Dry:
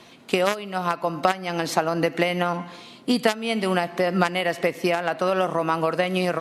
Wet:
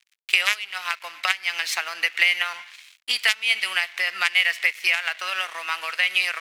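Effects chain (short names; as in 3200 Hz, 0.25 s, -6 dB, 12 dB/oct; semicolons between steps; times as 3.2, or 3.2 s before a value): crossover distortion -41 dBFS; resonant high-pass 2200 Hz, resonance Q 2.3; gain +4 dB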